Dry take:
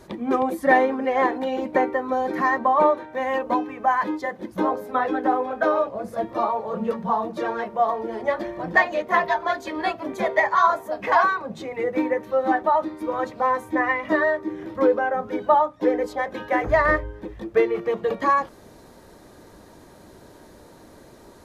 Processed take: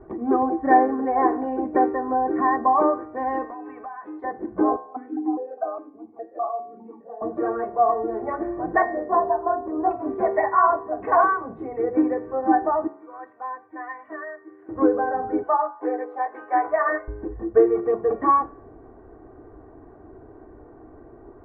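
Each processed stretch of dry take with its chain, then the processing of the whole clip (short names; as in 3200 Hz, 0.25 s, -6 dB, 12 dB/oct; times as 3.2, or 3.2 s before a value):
3.45–4.24 tilt +4 dB/oct + compressor 12:1, threshold -33 dBFS
4.76–7.22 notches 60/120/180/240/300/360/420 Hz + vowel sequencer 4.9 Hz
8.82–9.91 LPF 1200 Hz 24 dB/oct + notches 60/120/180/240/300/360/420/480/540/600 Hz
12.87–14.69 band-pass 4700 Hz, Q 0.67 + high shelf 4600 Hz -10 dB
15.43–17.08 HPF 680 Hz + doubler 16 ms -3 dB
whole clip: Bessel low-pass 980 Hz, order 6; comb 2.7 ms, depth 69%; de-hum 71.13 Hz, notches 38; gain +1.5 dB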